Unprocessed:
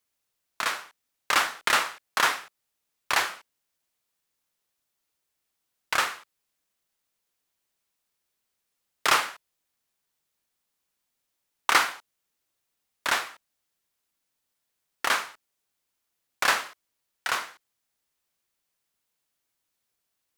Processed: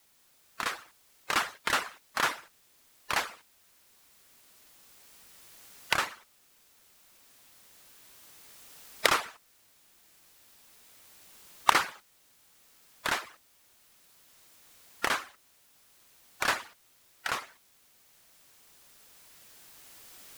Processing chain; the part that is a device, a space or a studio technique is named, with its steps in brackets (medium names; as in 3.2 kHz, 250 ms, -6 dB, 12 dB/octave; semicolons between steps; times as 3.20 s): harmonic-percussive separation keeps percussive; bass shelf 340 Hz +10 dB; cheap recorder with automatic gain (white noise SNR 27 dB; recorder AGC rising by 5 dB/s); trim -5.5 dB